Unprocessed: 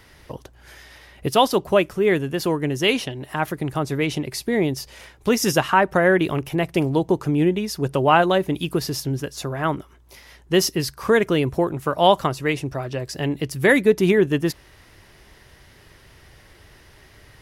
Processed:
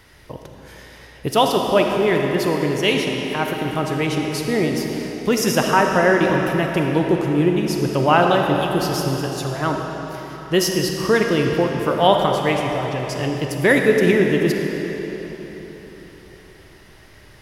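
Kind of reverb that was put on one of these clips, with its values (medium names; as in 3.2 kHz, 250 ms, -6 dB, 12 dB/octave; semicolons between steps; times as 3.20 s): algorithmic reverb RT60 4.2 s, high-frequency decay 0.85×, pre-delay 5 ms, DRR 1.5 dB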